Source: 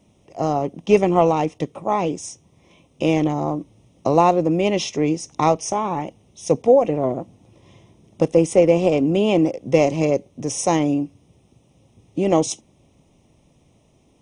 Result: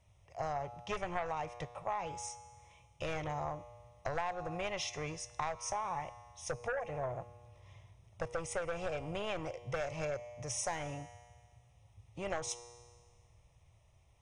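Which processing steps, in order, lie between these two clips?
feedback comb 120 Hz, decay 1.6 s, mix 60%; in parallel at -5.5 dB: sine folder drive 8 dB, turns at -9.5 dBFS; on the sum: FFT filter 100 Hz 0 dB, 260 Hz -30 dB, 600 Hz -10 dB, 1.8 kHz -2 dB, 3 kHz -9 dB; compression 6:1, threshold -29 dBFS, peak gain reduction 10 dB; trim -4 dB

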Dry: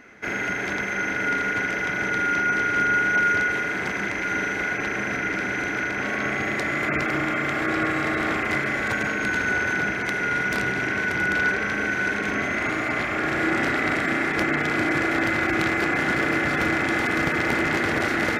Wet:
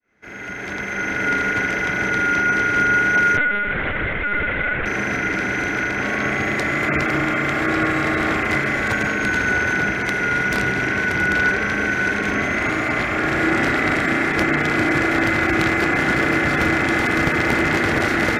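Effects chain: fade-in on the opening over 1.32 s; bass shelf 89 Hz +7.5 dB; 3.37–4.86 s: LPC vocoder at 8 kHz pitch kept; trim +4 dB

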